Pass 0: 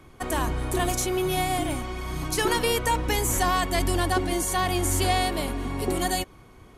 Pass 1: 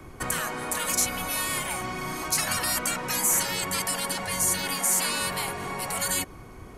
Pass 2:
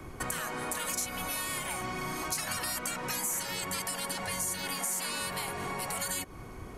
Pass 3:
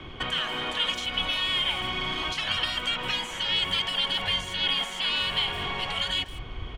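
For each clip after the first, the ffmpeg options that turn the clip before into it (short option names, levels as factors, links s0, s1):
-filter_complex "[0:a]afftfilt=real='re*lt(hypot(re,im),0.126)':imag='im*lt(hypot(re,im),0.126)':win_size=1024:overlap=0.75,equalizer=f=3400:w=2.4:g=-6.5,acrossover=split=200|850|3300[s0][s1][s2][s3];[s1]alimiter=level_in=5.96:limit=0.0631:level=0:latency=1,volume=0.168[s4];[s0][s4][s2][s3]amix=inputs=4:normalize=0,volume=2"
-af "acompressor=threshold=0.0224:ratio=3"
-filter_complex "[0:a]lowpass=f=3200:t=q:w=11,asplit=2[s0][s1];[s1]adelay=160,highpass=300,lowpass=3400,asoftclip=type=hard:threshold=0.0188,volume=0.282[s2];[s0][s2]amix=inputs=2:normalize=0,asubboost=boost=3.5:cutoff=94,volume=1.26"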